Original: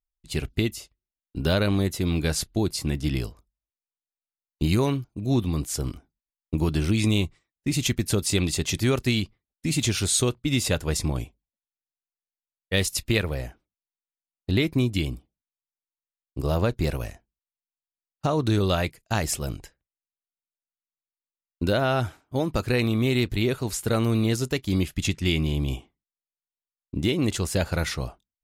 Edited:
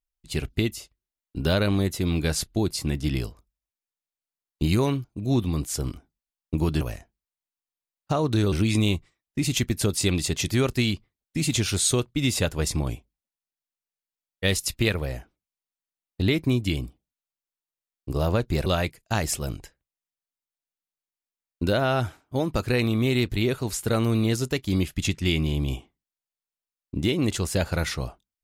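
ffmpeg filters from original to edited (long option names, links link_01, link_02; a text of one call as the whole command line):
ffmpeg -i in.wav -filter_complex "[0:a]asplit=4[link_01][link_02][link_03][link_04];[link_01]atrim=end=6.812[link_05];[link_02]atrim=start=16.948:end=18.662[link_06];[link_03]atrim=start=6.808:end=16.952[link_07];[link_04]atrim=start=18.658[link_08];[link_05][link_06]acrossfade=duration=0.004:curve1=hsin:curve2=hsin[link_09];[link_09][link_07]acrossfade=duration=0.004:curve1=hsin:curve2=hsin[link_10];[link_10][link_08]acrossfade=duration=0.004:curve1=hsin:curve2=hsin" out.wav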